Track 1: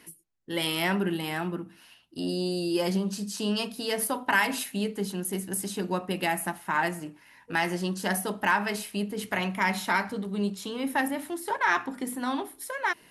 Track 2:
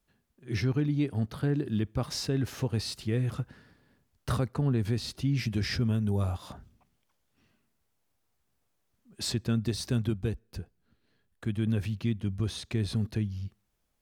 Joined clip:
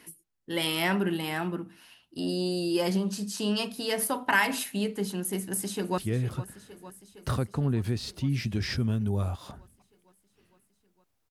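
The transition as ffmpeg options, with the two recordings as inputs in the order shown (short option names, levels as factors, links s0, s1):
-filter_complex "[0:a]apad=whole_dur=11.3,atrim=end=11.3,atrim=end=5.982[s0];[1:a]atrim=start=2.988:end=8.31[s1];[s0][s1]acrossfade=d=0.004:c1=hsin:c2=hsin,asplit=2[s2][s3];[s3]afade=t=in:st=5.31:d=0.01,afade=t=out:st=5.98:d=0.01,aecho=0:1:460|920|1380|1840|2300|2760|3220|3680|4140|4600|5060:0.177828|0.133371|0.100028|0.0750212|0.0562659|0.0421994|0.0316496|0.0237372|0.0178029|0.0133522|0.0100141[s4];[s2][s4]amix=inputs=2:normalize=0"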